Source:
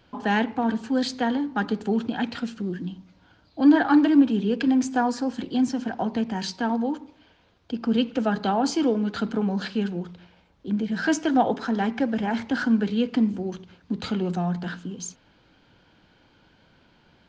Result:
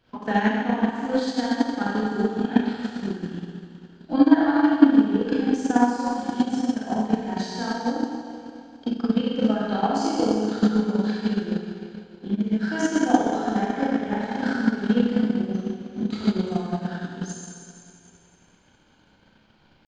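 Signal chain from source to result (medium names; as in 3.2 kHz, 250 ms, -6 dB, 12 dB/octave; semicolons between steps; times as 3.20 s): dynamic bell 2.7 kHz, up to -5 dB, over -52 dBFS, Q 4.3; tempo 0.87×; Schroeder reverb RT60 2.5 s, combs from 29 ms, DRR -8 dB; transient shaper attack +11 dB, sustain -4 dB; trim -9.5 dB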